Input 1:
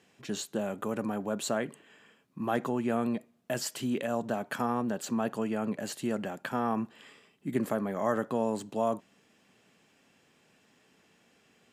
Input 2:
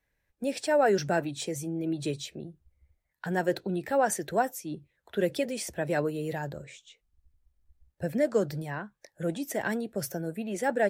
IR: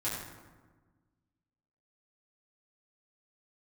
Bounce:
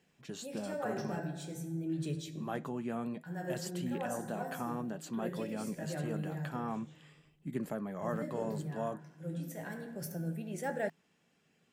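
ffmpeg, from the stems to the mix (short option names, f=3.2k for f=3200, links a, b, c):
-filter_complex "[0:a]flanger=delay=0.4:depth=7.4:regen=-71:speed=0.52:shape=sinusoidal,volume=-4.5dB,asplit=3[a][b][c];[a]atrim=end=1.2,asetpts=PTS-STARTPTS,afade=t=out:st=1.196:d=0.004:c=hsin[d];[b]atrim=start=1.2:end=1.89,asetpts=PTS-STARTPTS,volume=0[e];[c]atrim=start=1.89,asetpts=PTS-STARTPTS,afade=t=in:d=0.004:c=hsin[f];[d][e][f]concat=n=3:v=0:a=1,asplit=2[g][h];[1:a]highshelf=f=12k:g=9,volume=-11dB,asplit=2[i][j];[j]volume=-10.5dB[k];[h]apad=whole_len=480542[l];[i][l]sidechaincompress=threshold=-47dB:ratio=8:attack=16:release=1300[m];[2:a]atrim=start_sample=2205[n];[k][n]afir=irnorm=-1:irlink=0[o];[g][m][o]amix=inputs=3:normalize=0,equalizer=f=160:t=o:w=0.35:g=10.5"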